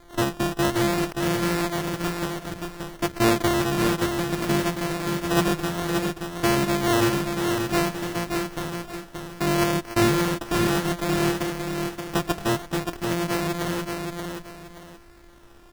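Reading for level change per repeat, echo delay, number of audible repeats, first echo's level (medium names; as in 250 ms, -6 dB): -11.0 dB, 577 ms, 2, -5.0 dB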